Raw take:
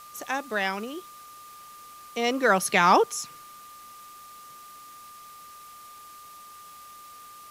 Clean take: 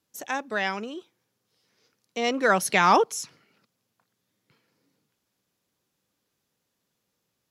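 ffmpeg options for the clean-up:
-af "bandreject=f=1200:w=30,afwtdn=0.0028"

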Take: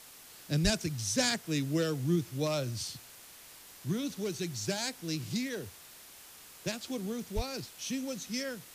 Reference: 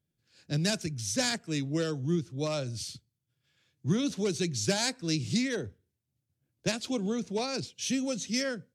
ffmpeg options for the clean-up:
-filter_complex "[0:a]asplit=3[s0][s1][s2];[s0]afade=t=out:st=0.63:d=0.02[s3];[s1]highpass=f=140:w=0.5412,highpass=f=140:w=1.3066,afade=t=in:st=0.63:d=0.02,afade=t=out:st=0.75:d=0.02[s4];[s2]afade=t=in:st=0.75:d=0.02[s5];[s3][s4][s5]amix=inputs=3:normalize=0,asplit=3[s6][s7][s8];[s6]afade=t=out:st=7.35:d=0.02[s9];[s7]highpass=f=140:w=0.5412,highpass=f=140:w=1.3066,afade=t=in:st=7.35:d=0.02,afade=t=out:st=7.47:d=0.02[s10];[s8]afade=t=in:st=7.47:d=0.02[s11];[s9][s10][s11]amix=inputs=3:normalize=0,afwtdn=0.0028,asetnsamples=n=441:p=0,asendcmd='3.23 volume volume 5.5dB',volume=1"

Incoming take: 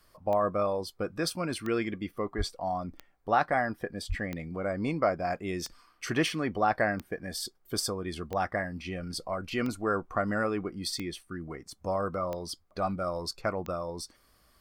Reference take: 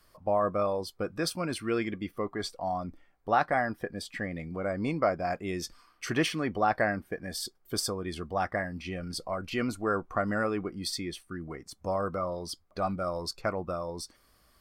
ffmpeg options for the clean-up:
-filter_complex "[0:a]adeclick=t=4,asplit=3[s0][s1][s2];[s0]afade=t=out:st=2.37:d=0.02[s3];[s1]highpass=f=140:w=0.5412,highpass=f=140:w=1.3066,afade=t=in:st=2.37:d=0.02,afade=t=out:st=2.49:d=0.02[s4];[s2]afade=t=in:st=2.49:d=0.02[s5];[s3][s4][s5]amix=inputs=3:normalize=0,asplit=3[s6][s7][s8];[s6]afade=t=out:st=4.08:d=0.02[s9];[s7]highpass=f=140:w=0.5412,highpass=f=140:w=1.3066,afade=t=in:st=4.08:d=0.02,afade=t=out:st=4.2:d=0.02[s10];[s8]afade=t=in:st=4.2:d=0.02[s11];[s9][s10][s11]amix=inputs=3:normalize=0"

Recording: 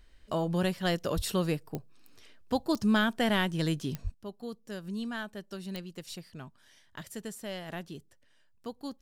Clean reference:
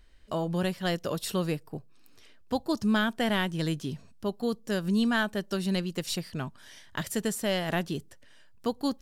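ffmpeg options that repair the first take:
-filter_complex "[0:a]adeclick=t=4,asplit=3[s0][s1][s2];[s0]afade=t=out:st=1.15:d=0.02[s3];[s1]highpass=f=140:w=0.5412,highpass=f=140:w=1.3066,afade=t=in:st=1.15:d=0.02,afade=t=out:st=1.27:d=0.02[s4];[s2]afade=t=in:st=1.27:d=0.02[s5];[s3][s4][s5]amix=inputs=3:normalize=0,asplit=3[s6][s7][s8];[s6]afade=t=out:st=4.03:d=0.02[s9];[s7]highpass=f=140:w=0.5412,highpass=f=140:w=1.3066,afade=t=in:st=4.03:d=0.02,afade=t=out:st=4.15:d=0.02[s10];[s8]afade=t=in:st=4.15:d=0.02[s11];[s9][s10][s11]amix=inputs=3:normalize=0,asetnsamples=n=441:p=0,asendcmd='4.14 volume volume 10.5dB',volume=1"

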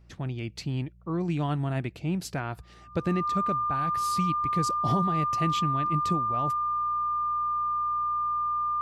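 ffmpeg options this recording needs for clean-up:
-af "bandreject=f=59.1:t=h:w=4,bandreject=f=118.2:t=h:w=4,bandreject=f=177.3:t=h:w=4,bandreject=f=1200:w=30"

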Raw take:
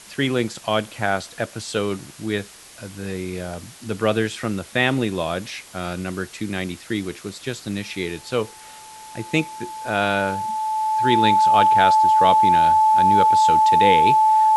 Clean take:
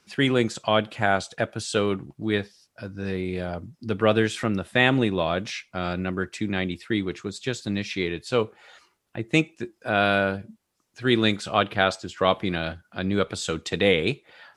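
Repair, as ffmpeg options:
-af "bandreject=f=870:w=30,afwtdn=0.0079"

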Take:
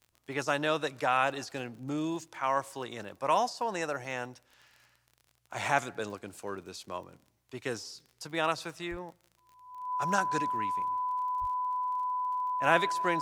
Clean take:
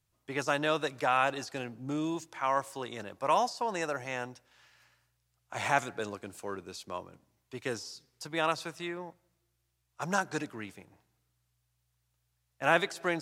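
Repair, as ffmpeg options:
-filter_complex "[0:a]adeclick=t=4,bandreject=f=1000:w=30,asplit=3[s0][s1][s2];[s0]afade=t=out:st=8.9:d=0.02[s3];[s1]highpass=f=140:w=0.5412,highpass=f=140:w=1.3066,afade=t=in:st=8.9:d=0.02,afade=t=out:st=9.02:d=0.02[s4];[s2]afade=t=in:st=9.02:d=0.02[s5];[s3][s4][s5]amix=inputs=3:normalize=0,asplit=3[s6][s7][s8];[s6]afade=t=out:st=11.4:d=0.02[s9];[s7]highpass=f=140:w=0.5412,highpass=f=140:w=1.3066,afade=t=in:st=11.4:d=0.02,afade=t=out:st=11.52:d=0.02[s10];[s8]afade=t=in:st=11.52:d=0.02[s11];[s9][s10][s11]amix=inputs=3:normalize=0"

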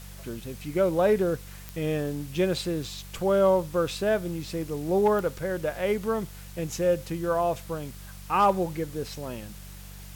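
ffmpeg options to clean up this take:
-af "adeclick=t=4,bandreject=f=48.2:t=h:w=4,bandreject=f=96.4:t=h:w=4,bandreject=f=144.6:t=h:w=4,bandreject=f=192.8:t=h:w=4,afwtdn=0.0035"

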